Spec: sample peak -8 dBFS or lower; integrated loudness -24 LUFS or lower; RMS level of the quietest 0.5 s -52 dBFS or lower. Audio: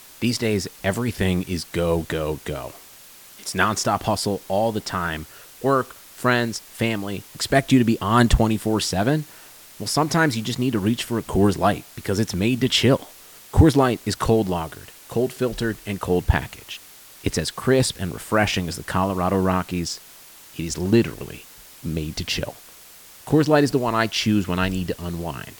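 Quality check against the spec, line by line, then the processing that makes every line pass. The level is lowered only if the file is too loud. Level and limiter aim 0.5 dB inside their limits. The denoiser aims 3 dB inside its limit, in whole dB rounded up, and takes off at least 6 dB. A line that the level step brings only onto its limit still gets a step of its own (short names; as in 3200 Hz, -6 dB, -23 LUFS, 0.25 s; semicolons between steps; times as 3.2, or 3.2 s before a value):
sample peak -3.0 dBFS: fail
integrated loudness -22.0 LUFS: fail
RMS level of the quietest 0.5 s -46 dBFS: fail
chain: denoiser 7 dB, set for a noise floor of -46 dBFS; gain -2.5 dB; limiter -8.5 dBFS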